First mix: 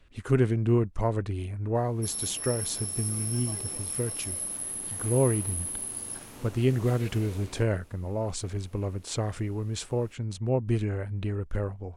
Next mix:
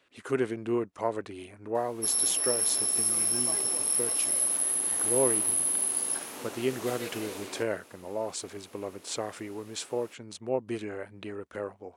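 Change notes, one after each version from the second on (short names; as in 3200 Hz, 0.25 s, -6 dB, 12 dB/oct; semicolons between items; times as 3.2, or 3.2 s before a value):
background +7.0 dB; master: add HPF 340 Hz 12 dB/oct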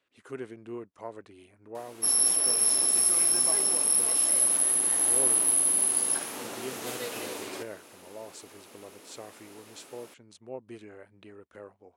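speech -10.5 dB; background +3.5 dB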